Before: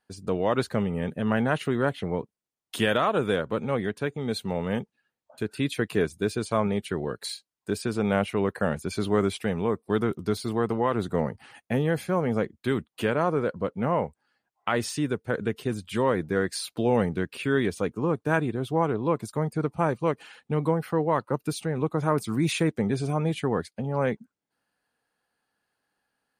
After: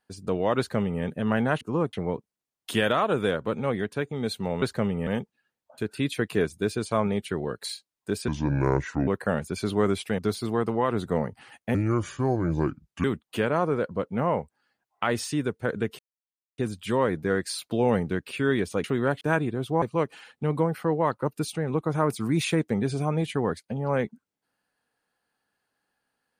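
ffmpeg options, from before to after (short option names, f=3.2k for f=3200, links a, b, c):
-filter_complex "[0:a]asplit=14[a][b][c][d][e][f][g][h][i][j][k][l][m][n];[a]atrim=end=1.612[o];[b]atrim=start=17.898:end=18.222[p];[c]atrim=start=1.978:end=4.672[q];[d]atrim=start=0.578:end=1.032[r];[e]atrim=start=4.668:end=7.884[s];[f]atrim=start=7.88:end=8.42,asetpts=PTS-STARTPTS,asetrate=29988,aresample=44100[t];[g]atrim=start=8.416:end=9.532[u];[h]atrim=start=10.208:end=11.774[v];[i]atrim=start=11.77:end=12.69,asetpts=PTS-STARTPTS,asetrate=31311,aresample=44100[w];[j]atrim=start=12.686:end=15.64,asetpts=PTS-STARTPTS,afade=t=out:st=2.95:d=0.004:c=hsin,apad=pad_dur=0.59[x];[k]atrim=start=15.64:end=17.902,asetpts=PTS-STARTPTS,afade=t=in:d=0.004:c=hsin[y];[l]atrim=start=1.608:end=1.982[z];[m]atrim=start=18.218:end=18.832[aa];[n]atrim=start=19.898[ab];[o][p]acrossfade=d=0.004:c1=hsin:c2=hsin[ac];[ac][q]acrossfade=d=0.004:c1=hsin:c2=hsin[ad];[ad][r]acrossfade=d=0.004:c1=hsin:c2=hsin[ae];[ae][s]acrossfade=d=0.004:c1=hsin:c2=hsin[af];[af][t]acrossfade=d=0.004:c1=hsin:c2=hsin[ag];[ag][u]acrossfade=d=0.004:c1=hsin:c2=hsin[ah];[ah][v]acrossfade=d=0.004:c1=hsin:c2=hsin[ai];[ai][w]acrossfade=d=0.004:c1=hsin:c2=hsin[aj];[x][y]concat=n=2:v=0:a=1[ak];[aj][ak]acrossfade=d=0.004:c1=hsin:c2=hsin[al];[al][z]acrossfade=d=0.004:c1=hsin:c2=hsin[am];[am][aa]acrossfade=d=0.004:c1=hsin:c2=hsin[an];[an][ab]acrossfade=d=0.004:c1=hsin:c2=hsin"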